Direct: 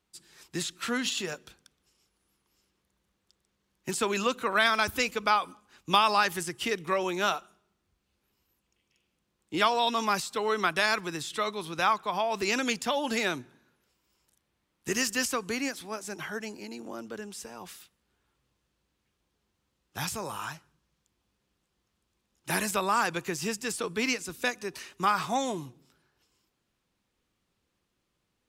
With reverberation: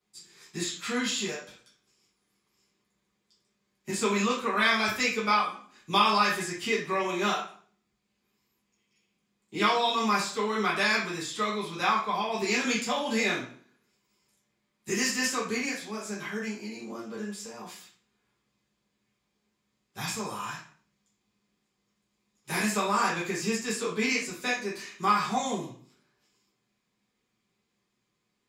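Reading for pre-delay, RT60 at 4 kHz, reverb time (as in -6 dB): 3 ms, 0.40 s, 0.50 s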